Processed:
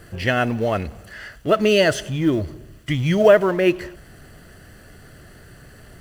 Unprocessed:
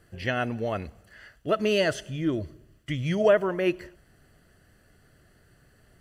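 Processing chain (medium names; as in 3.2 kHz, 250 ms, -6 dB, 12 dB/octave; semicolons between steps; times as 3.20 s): companding laws mixed up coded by mu; trim +7 dB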